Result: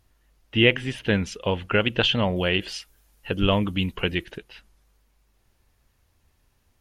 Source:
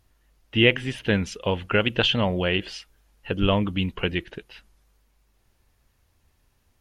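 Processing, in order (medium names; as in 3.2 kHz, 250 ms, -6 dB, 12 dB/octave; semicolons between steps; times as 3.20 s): 2.36–4.38 s: treble shelf 6.8 kHz +11 dB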